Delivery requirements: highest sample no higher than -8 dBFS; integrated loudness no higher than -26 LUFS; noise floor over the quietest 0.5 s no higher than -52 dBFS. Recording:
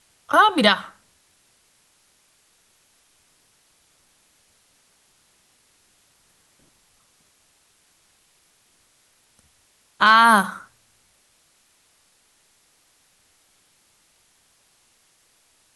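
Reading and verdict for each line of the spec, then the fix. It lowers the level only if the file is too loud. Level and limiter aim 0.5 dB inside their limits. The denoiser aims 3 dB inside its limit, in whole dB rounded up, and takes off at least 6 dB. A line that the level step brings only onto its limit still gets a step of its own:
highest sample -3.0 dBFS: fail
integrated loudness -16.5 LUFS: fail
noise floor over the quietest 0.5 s -62 dBFS: OK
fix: gain -10 dB

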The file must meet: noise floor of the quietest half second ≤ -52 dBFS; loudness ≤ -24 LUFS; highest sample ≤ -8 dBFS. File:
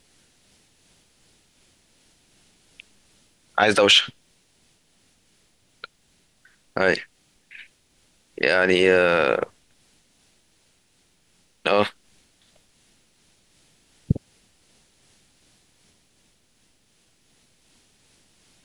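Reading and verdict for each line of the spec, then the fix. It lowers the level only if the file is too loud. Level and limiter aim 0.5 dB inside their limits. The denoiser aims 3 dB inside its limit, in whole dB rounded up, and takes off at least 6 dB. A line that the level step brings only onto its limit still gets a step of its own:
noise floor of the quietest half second -63 dBFS: OK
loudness -20.5 LUFS: fail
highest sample -5.0 dBFS: fail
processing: gain -4 dB

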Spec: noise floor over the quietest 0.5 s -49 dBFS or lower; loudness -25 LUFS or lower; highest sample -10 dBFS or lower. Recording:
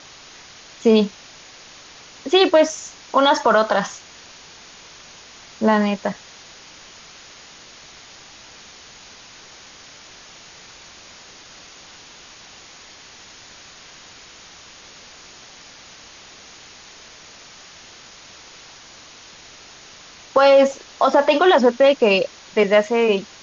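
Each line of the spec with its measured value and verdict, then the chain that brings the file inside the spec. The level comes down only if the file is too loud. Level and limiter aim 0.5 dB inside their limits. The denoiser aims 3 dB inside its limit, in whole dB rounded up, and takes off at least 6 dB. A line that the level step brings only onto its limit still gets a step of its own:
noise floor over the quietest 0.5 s -44 dBFS: fail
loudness -17.0 LUFS: fail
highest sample -5.0 dBFS: fail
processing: gain -8.5 dB

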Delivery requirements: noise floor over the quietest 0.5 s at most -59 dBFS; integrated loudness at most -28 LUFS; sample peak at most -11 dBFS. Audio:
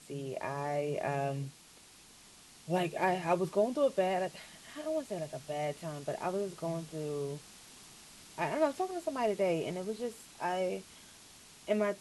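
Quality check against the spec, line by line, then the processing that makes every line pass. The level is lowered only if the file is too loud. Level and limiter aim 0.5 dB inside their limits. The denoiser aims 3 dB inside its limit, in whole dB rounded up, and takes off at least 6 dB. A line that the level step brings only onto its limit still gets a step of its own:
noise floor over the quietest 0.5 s -57 dBFS: fail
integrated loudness -34.5 LUFS: OK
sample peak -17.0 dBFS: OK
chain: denoiser 6 dB, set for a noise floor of -57 dBFS

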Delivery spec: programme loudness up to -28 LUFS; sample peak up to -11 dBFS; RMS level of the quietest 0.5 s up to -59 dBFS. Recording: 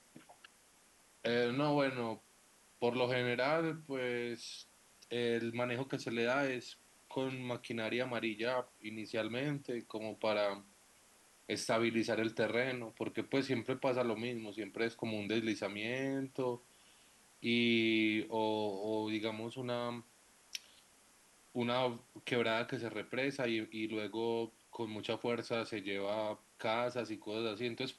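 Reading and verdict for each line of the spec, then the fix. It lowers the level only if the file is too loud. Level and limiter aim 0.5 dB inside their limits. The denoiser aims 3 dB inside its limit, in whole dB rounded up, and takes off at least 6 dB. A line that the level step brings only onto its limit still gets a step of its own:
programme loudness -37.0 LUFS: OK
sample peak -20.0 dBFS: OK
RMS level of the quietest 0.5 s -66 dBFS: OK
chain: none

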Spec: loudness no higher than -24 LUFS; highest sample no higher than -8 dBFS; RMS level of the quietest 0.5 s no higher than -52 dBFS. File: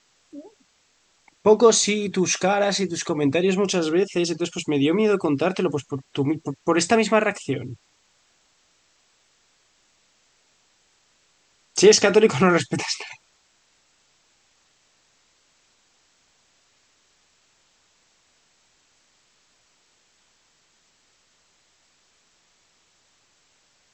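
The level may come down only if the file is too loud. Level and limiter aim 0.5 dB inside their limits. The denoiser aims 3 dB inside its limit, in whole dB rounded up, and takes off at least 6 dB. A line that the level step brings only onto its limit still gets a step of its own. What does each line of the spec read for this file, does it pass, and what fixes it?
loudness -20.5 LUFS: fail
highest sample -3.0 dBFS: fail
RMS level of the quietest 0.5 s -64 dBFS: OK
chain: gain -4 dB; limiter -8.5 dBFS

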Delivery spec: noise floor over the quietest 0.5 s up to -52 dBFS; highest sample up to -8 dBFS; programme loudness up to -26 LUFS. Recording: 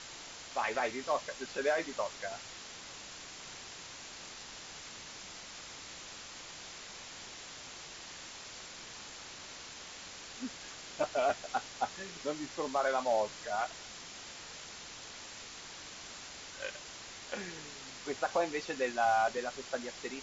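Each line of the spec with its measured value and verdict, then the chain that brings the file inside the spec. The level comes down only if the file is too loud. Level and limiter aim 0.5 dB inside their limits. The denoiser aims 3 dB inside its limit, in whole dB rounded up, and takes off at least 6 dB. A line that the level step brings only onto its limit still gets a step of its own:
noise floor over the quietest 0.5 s -48 dBFS: fail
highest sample -20.0 dBFS: OK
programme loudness -38.0 LUFS: OK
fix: denoiser 7 dB, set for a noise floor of -48 dBFS

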